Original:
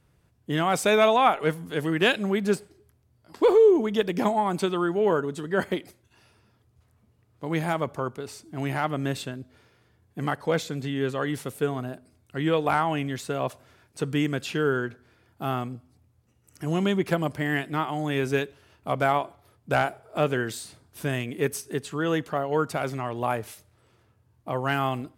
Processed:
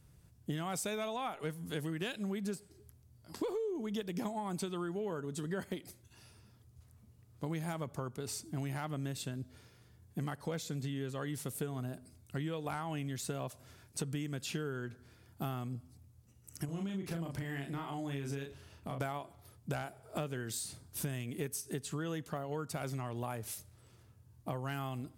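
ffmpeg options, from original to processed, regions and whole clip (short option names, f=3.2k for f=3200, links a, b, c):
-filter_complex "[0:a]asettb=1/sr,asplit=3[a][b][c];[a]atrim=end=16.654[d];[b]atrim=start=16.65:end=19.01,asetpts=PTS-STARTPTS,afade=t=in:d=0.004:c=qsin,afade=t=out:st=2.356:d=0.004:c=qsin,highshelf=f=6.4k:g=-6,acompressor=threshold=-37dB:ratio=3:attack=3.2:release=140:knee=1:detection=peak,asplit=2[e][f];[f]adelay=36,volume=-4dB[g];[e][g]amix=inputs=2:normalize=0,atrim=end_sample=104076[h];[c]atrim=start=19.006[i];[d][h]acrossfade=d=0.004:c1=hsin:c2=qsin[j];[j][i]acrossfade=d=0.004:c1=qsin:c2=hsin,bass=f=250:g=8,treble=f=4k:g=10,acompressor=threshold=-30dB:ratio=12,volume=-4.5dB"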